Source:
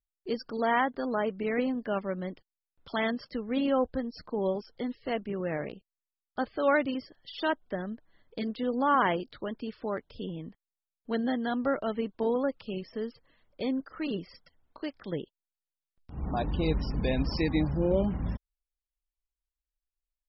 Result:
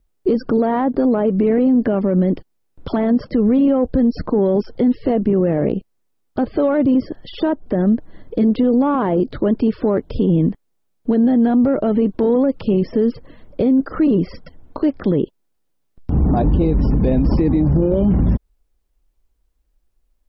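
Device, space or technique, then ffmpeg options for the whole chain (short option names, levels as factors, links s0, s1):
mastering chain: -filter_complex "[0:a]equalizer=f=320:t=o:w=1.7:g=3.5,acrossover=split=1500|3400[s0][s1][s2];[s0]acompressor=threshold=0.0447:ratio=4[s3];[s1]acompressor=threshold=0.00282:ratio=4[s4];[s2]acompressor=threshold=0.001:ratio=4[s5];[s3][s4][s5]amix=inputs=3:normalize=0,acompressor=threshold=0.0316:ratio=2,asoftclip=type=tanh:threshold=0.0708,tiltshelf=f=830:g=7.5,alimiter=level_in=23.7:limit=0.891:release=50:level=0:latency=1,volume=0.398"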